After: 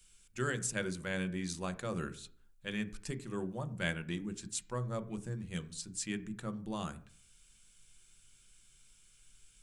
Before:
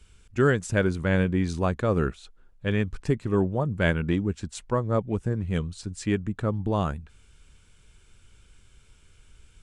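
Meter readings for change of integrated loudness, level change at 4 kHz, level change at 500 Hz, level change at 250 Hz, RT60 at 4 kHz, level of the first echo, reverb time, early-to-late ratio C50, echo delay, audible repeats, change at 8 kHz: -12.0 dB, -4.0 dB, -15.0 dB, -12.5 dB, 0.45 s, none, 0.50 s, 17.0 dB, none, none, +2.0 dB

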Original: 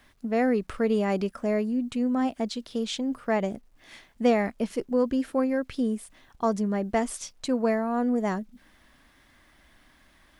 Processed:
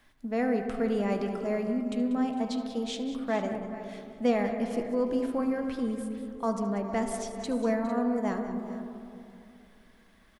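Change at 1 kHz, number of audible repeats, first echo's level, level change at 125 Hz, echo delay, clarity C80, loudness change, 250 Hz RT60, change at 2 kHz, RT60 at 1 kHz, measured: -3.0 dB, 4, -16.0 dB, n/a, 74 ms, 6.0 dB, -3.0 dB, 3.8 s, -4.0 dB, 2.4 s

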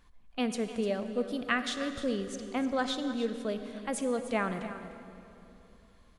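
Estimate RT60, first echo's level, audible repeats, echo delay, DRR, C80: 2.9 s, -13.5 dB, 1, 0.3 s, 7.5 dB, 8.5 dB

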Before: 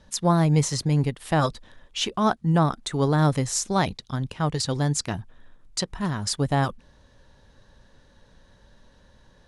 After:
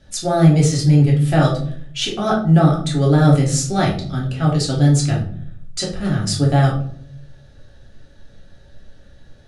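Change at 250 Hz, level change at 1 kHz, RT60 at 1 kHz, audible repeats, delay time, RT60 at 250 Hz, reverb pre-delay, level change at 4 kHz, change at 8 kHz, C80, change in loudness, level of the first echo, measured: +8.0 dB, +3.0 dB, 0.50 s, none, none, 0.85 s, 3 ms, +4.5 dB, +4.0 dB, 11.5 dB, +8.0 dB, none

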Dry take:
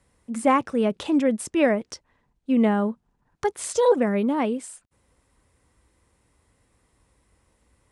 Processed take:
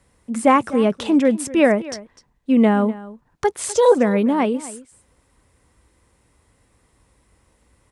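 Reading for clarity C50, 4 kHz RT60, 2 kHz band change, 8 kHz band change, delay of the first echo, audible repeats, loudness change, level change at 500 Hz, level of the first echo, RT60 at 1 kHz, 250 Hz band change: none, none, +5.0 dB, +5.0 dB, 0.251 s, 1, +5.0 dB, +5.0 dB, -18.0 dB, none, +5.0 dB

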